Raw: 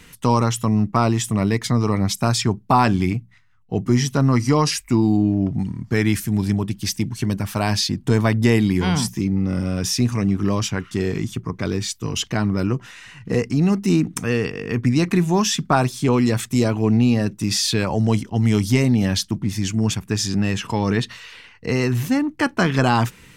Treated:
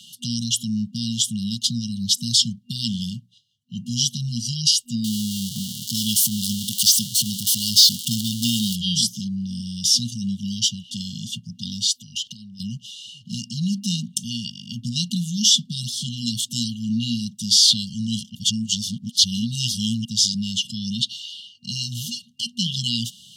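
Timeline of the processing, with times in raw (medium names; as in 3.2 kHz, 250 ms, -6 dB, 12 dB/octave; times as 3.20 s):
5.04–8.76 s: zero-crossing glitches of -15.5 dBFS
11.97–12.60 s: compression 16:1, threshold -29 dBFS
18.35–20.05 s: reverse
whole clip: frequency weighting D; FFT band-reject 240–2800 Hz; high-pass 110 Hz; trim -2 dB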